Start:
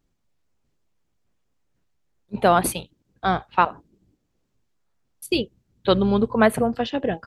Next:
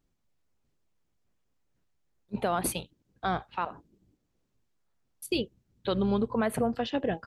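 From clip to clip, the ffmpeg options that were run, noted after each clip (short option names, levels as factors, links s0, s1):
-af "alimiter=limit=0.188:level=0:latency=1:release=108,volume=0.631"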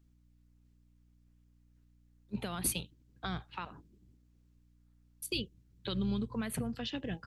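-filter_complex "[0:a]equalizer=f=660:t=o:w=1.2:g=-7.5,acrossover=split=180|2400[s0][s1][s2];[s1]acompressor=threshold=0.0112:ratio=6[s3];[s0][s3][s2]amix=inputs=3:normalize=0,aeval=exprs='val(0)+0.000562*(sin(2*PI*60*n/s)+sin(2*PI*2*60*n/s)/2+sin(2*PI*3*60*n/s)/3+sin(2*PI*4*60*n/s)/4+sin(2*PI*5*60*n/s)/5)':c=same"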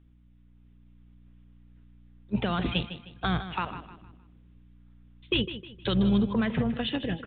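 -af "dynaudnorm=f=210:g=7:m=1.5,aresample=8000,asoftclip=type=tanh:threshold=0.0631,aresample=44100,aecho=1:1:155|310|465|620:0.251|0.0904|0.0326|0.0117,volume=2.51"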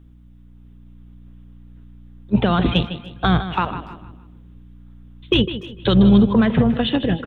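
-filter_complex "[0:a]acontrast=49,equalizer=f=2300:t=o:w=1.1:g=-6,asplit=2[s0][s1];[s1]adelay=290,highpass=300,lowpass=3400,asoftclip=type=hard:threshold=0.1,volume=0.0794[s2];[s0][s2]amix=inputs=2:normalize=0,volume=1.88"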